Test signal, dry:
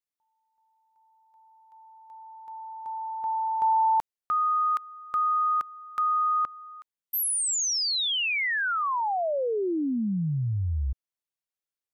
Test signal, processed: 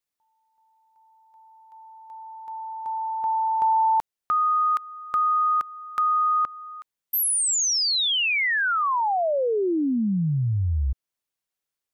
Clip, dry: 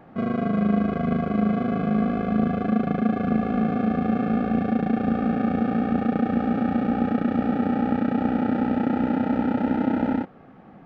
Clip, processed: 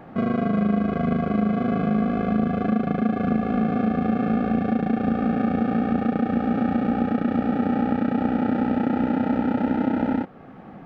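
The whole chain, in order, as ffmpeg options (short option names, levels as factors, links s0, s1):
-af "acompressor=threshold=0.0501:ratio=2:attack=11:release=480:knee=6:detection=rms,volume=1.88"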